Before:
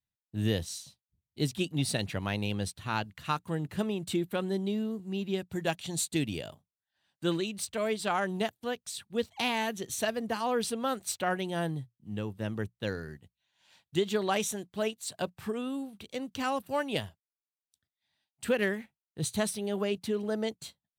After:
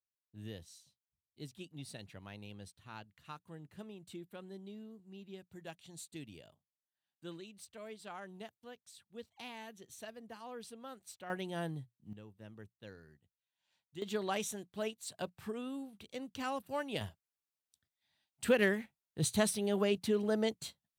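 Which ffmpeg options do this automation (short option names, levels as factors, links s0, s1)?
-af "asetnsamples=n=441:p=0,asendcmd='11.3 volume volume -7dB;12.13 volume volume -18dB;14.02 volume volume -7dB;17.01 volume volume -0.5dB',volume=0.133"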